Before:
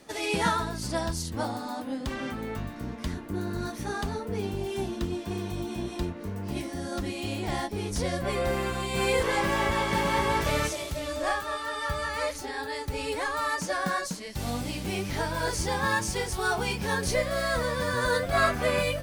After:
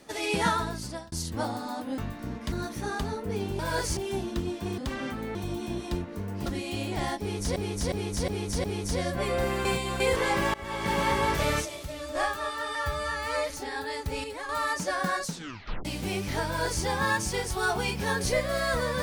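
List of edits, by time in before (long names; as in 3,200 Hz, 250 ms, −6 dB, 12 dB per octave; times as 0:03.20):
0:00.71–0:01.12: fade out
0:01.98–0:02.55: move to 0:05.43
0:03.09–0:03.55: remove
0:06.54–0:06.97: remove
0:07.71–0:08.07: repeat, 5 plays
0:08.72–0:09.07: reverse
0:09.61–0:10.05: fade in, from −23.5 dB
0:10.72–0:11.22: clip gain −4.5 dB
0:11.82–0:12.32: time-stretch 1.5×
0:13.06–0:13.31: clip gain −7 dB
0:14.09: tape stop 0.58 s
0:15.28–0:15.66: duplicate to 0:04.62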